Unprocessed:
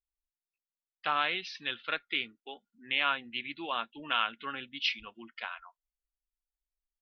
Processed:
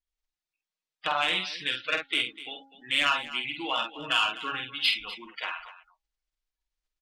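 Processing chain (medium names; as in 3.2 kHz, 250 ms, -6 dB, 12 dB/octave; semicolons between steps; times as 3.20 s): coarse spectral quantiser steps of 30 dB; low-pass 5.2 kHz 12 dB/octave; treble shelf 2.5 kHz +6 dB; comb 6.4 ms, depth 50%; de-hum 272.2 Hz, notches 3; saturation -17 dBFS, distortion -16 dB; multi-tap echo 48/249 ms -5.5/-15.5 dB; trim +2.5 dB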